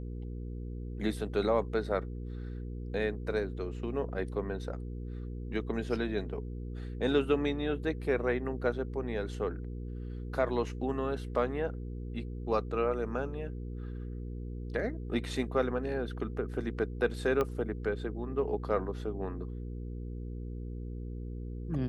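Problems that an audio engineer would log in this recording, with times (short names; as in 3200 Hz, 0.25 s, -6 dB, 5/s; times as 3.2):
hum 60 Hz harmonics 8 -39 dBFS
17.41 pop -18 dBFS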